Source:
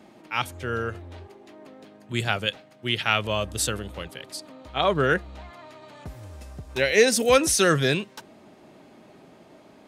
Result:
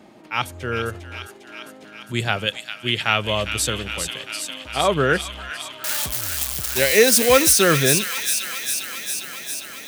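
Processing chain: 5.84–7.53 s: zero-crossing glitches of -15 dBFS; feedback echo behind a high-pass 403 ms, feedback 75%, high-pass 2.1 kHz, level -5 dB; trim +3 dB

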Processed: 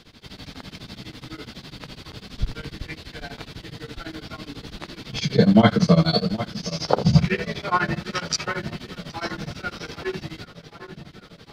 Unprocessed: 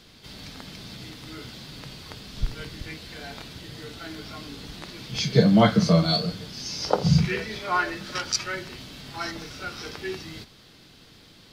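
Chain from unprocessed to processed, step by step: treble shelf 5.6 kHz -8 dB; on a send: filtered feedback delay 772 ms, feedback 68%, low-pass 4 kHz, level -14.5 dB; on the sum: tremolo of two beating tones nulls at 12 Hz; trim +5.5 dB

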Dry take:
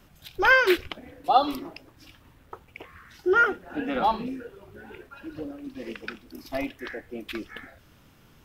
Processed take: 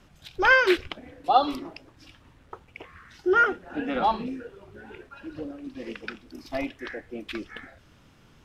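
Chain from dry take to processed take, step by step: low-pass 8.5 kHz 12 dB/octave

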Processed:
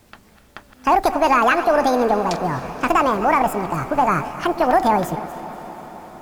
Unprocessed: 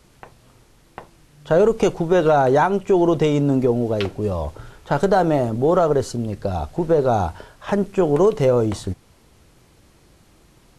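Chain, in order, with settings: chunks repeated in reverse 225 ms, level -13 dB; echo that smears into a reverb 477 ms, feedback 74%, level -15.5 dB; speed mistake 45 rpm record played at 78 rpm

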